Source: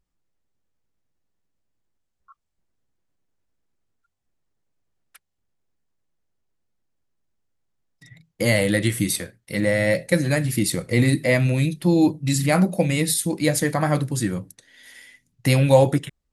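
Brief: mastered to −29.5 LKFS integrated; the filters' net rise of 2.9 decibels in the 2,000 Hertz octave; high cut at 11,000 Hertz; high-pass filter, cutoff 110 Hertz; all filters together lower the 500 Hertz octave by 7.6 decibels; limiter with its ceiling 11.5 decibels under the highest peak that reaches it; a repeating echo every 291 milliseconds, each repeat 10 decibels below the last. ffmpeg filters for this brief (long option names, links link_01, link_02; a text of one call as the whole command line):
ffmpeg -i in.wav -af "highpass=110,lowpass=11000,equalizer=frequency=500:width_type=o:gain=-9,equalizer=frequency=2000:width_type=o:gain=3.5,alimiter=limit=-17dB:level=0:latency=1,aecho=1:1:291|582|873|1164:0.316|0.101|0.0324|0.0104,volume=-3dB" out.wav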